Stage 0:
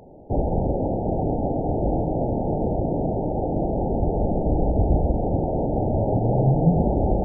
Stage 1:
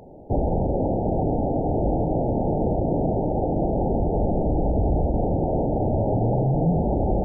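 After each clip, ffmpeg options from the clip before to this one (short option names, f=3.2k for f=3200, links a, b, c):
-af "alimiter=limit=-15.5dB:level=0:latency=1:release=28,volume=1.5dB"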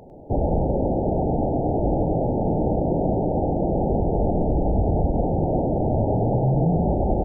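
-filter_complex "[0:a]asplit=2[a][b];[b]adelay=99.13,volume=-6dB,highshelf=f=4k:g=-2.23[c];[a][c]amix=inputs=2:normalize=0"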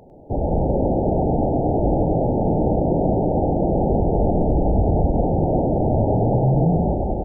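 -af "dynaudnorm=f=140:g=7:m=5dB,volume=-2dB"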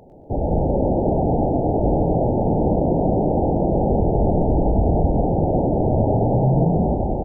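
-filter_complex "[0:a]asplit=6[a][b][c][d][e][f];[b]adelay=120,afreqshift=40,volume=-12dB[g];[c]adelay=240,afreqshift=80,volume=-17.7dB[h];[d]adelay=360,afreqshift=120,volume=-23.4dB[i];[e]adelay=480,afreqshift=160,volume=-29dB[j];[f]adelay=600,afreqshift=200,volume=-34.7dB[k];[a][g][h][i][j][k]amix=inputs=6:normalize=0"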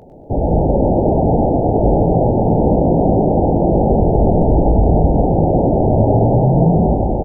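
-filter_complex "[0:a]asplit=2[a][b];[b]adelay=18,volume=-11dB[c];[a][c]amix=inputs=2:normalize=0,volume=5dB"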